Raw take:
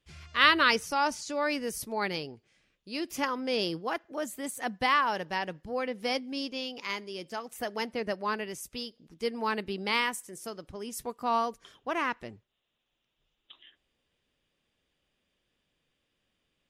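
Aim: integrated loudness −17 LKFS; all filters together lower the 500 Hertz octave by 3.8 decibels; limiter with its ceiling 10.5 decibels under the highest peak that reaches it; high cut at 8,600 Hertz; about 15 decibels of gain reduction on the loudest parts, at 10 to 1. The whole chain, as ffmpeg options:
ffmpeg -i in.wav -af "lowpass=8600,equalizer=frequency=500:width_type=o:gain=-4.5,acompressor=threshold=-31dB:ratio=10,volume=23.5dB,alimiter=limit=-5.5dB:level=0:latency=1" out.wav

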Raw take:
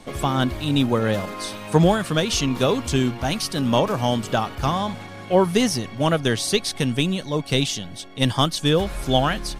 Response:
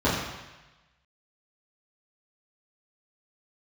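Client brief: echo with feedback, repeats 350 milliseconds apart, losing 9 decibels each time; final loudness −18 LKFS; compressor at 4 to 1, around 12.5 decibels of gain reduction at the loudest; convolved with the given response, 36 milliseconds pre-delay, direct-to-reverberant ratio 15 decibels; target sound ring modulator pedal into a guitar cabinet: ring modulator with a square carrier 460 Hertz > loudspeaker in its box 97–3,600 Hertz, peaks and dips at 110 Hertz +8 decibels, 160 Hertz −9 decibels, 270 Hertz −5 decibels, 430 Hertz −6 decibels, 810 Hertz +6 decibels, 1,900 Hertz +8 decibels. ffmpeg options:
-filter_complex "[0:a]acompressor=threshold=-27dB:ratio=4,aecho=1:1:350|700|1050|1400:0.355|0.124|0.0435|0.0152,asplit=2[link_01][link_02];[1:a]atrim=start_sample=2205,adelay=36[link_03];[link_02][link_03]afir=irnorm=-1:irlink=0,volume=-31.5dB[link_04];[link_01][link_04]amix=inputs=2:normalize=0,aeval=exprs='val(0)*sgn(sin(2*PI*460*n/s))':channel_layout=same,highpass=97,equalizer=frequency=110:width_type=q:width=4:gain=8,equalizer=frequency=160:width_type=q:width=4:gain=-9,equalizer=frequency=270:width_type=q:width=4:gain=-5,equalizer=frequency=430:width_type=q:width=4:gain=-6,equalizer=frequency=810:width_type=q:width=4:gain=6,equalizer=frequency=1900:width_type=q:width=4:gain=8,lowpass=frequency=3600:width=0.5412,lowpass=frequency=3600:width=1.3066,volume=10dB"

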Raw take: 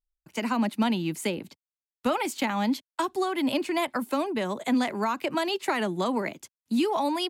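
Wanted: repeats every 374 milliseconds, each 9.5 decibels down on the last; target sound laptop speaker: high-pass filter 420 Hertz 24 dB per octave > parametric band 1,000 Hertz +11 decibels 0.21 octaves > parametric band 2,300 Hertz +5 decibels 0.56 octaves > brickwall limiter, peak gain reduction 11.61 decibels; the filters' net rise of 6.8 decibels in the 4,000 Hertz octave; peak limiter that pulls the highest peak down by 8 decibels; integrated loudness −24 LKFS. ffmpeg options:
ffmpeg -i in.wav -af "equalizer=frequency=4000:width_type=o:gain=7.5,alimiter=limit=-20.5dB:level=0:latency=1,highpass=frequency=420:width=0.5412,highpass=frequency=420:width=1.3066,equalizer=frequency=1000:width_type=o:width=0.21:gain=11,equalizer=frequency=2300:width_type=o:width=0.56:gain=5,aecho=1:1:374|748|1122|1496:0.335|0.111|0.0365|0.012,volume=10.5dB,alimiter=limit=-15dB:level=0:latency=1" out.wav

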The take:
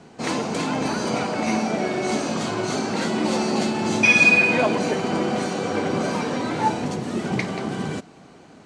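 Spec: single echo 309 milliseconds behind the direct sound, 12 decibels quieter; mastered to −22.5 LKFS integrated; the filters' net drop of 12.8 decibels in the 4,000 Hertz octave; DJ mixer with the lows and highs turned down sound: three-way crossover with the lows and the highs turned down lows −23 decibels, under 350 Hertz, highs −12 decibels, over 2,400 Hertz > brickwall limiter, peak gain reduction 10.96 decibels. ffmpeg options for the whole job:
ffmpeg -i in.wav -filter_complex "[0:a]acrossover=split=350 2400:gain=0.0708 1 0.251[link_01][link_02][link_03];[link_01][link_02][link_03]amix=inputs=3:normalize=0,equalizer=frequency=4000:width_type=o:gain=-5.5,aecho=1:1:309:0.251,volume=8dB,alimiter=limit=-14dB:level=0:latency=1" out.wav

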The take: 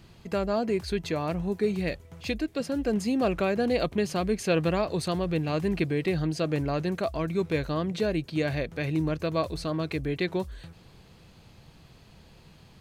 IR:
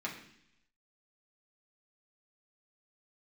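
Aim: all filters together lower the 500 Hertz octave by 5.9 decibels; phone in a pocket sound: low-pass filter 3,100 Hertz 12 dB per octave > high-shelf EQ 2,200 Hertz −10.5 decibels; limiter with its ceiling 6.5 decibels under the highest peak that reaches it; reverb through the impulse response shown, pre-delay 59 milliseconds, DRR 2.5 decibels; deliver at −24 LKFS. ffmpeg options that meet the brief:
-filter_complex "[0:a]equalizer=frequency=500:width_type=o:gain=-7,alimiter=limit=-22dB:level=0:latency=1,asplit=2[link_01][link_02];[1:a]atrim=start_sample=2205,adelay=59[link_03];[link_02][link_03]afir=irnorm=-1:irlink=0,volume=-5.5dB[link_04];[link_01][link_04]amix=inputs=2:normalize=0,lowpass=3100,highshelf=frequency=2200:gain=-10.5,volume=6.5dB"

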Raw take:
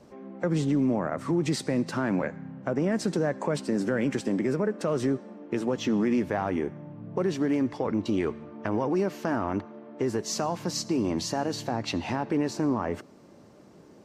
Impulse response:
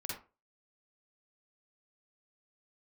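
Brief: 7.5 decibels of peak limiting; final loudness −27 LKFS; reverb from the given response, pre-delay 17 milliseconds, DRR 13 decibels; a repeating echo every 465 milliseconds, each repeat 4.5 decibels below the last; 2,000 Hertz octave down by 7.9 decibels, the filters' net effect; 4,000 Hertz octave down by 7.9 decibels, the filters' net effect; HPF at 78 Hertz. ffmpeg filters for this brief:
-filter_complex "[0:a]highpass=78,equalizer=frequency=2000:width_type=o:gain=-9,equalizer=frequency=4000:width_type=o:gain=-8.5,alimiter=limit=-22dB:level=0:latency=1,aecho=1:1:465|930|1395|1860|2325|2790|3255|3720|4185:0.596|0.357|0.214|0.129|0.0772|0.0463|0.0278|0.0167|0.01,asplit=2[link_01][link_02];[1:a]atrim=start_sample=2205,adelay=17[link_03];[link_02][link_03]afir=irnorm=-1:irlink=0,volume=-13.5dB[link_04];[link_01][link_04]amix=inputs=2:normalize=0,volume=3.5dB"

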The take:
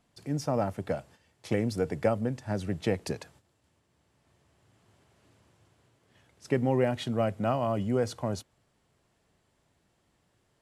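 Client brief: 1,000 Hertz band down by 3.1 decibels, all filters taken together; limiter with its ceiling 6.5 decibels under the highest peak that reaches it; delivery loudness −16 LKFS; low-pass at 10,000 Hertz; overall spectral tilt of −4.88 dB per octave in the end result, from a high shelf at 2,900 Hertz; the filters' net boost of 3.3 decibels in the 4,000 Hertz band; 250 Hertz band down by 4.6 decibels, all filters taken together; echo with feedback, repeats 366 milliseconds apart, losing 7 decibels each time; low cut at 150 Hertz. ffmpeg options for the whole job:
ffmpeg -i in.wav -af "highpass=150,lowpass=10000,equalizer=frequency=250:width_type=o:gain=-4.5,equalizer=frequency=1000:width_type=o:gain=-4,highshelf=frequency=2900:gain=-5.5,equalizer=frequency=4000:width_type=o:gain=9,alimiter=limit=-22dB:level=0:latency=1,aecho=1:1:366|732|1098|1464|1830:0.447|0.201|0.0905|0.0407|0.0183,volume=18.5dB" out.wav

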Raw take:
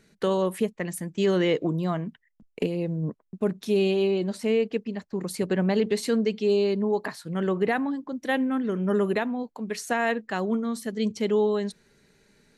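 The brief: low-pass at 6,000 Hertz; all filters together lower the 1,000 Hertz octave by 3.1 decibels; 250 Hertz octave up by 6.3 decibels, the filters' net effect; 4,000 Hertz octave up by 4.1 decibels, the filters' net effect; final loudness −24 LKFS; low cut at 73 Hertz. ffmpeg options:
ffmpeg -i in.wav -af "highpass=73,lowpass=6000,equalizer=frequency=250:width_type=o:gain=8.5,equalizer=frequency=1000:width_type=o:gain=-5.5,equalizer=frequency=4000:width_type=o:gain=6.5,volume=-1.5dB" out.wav

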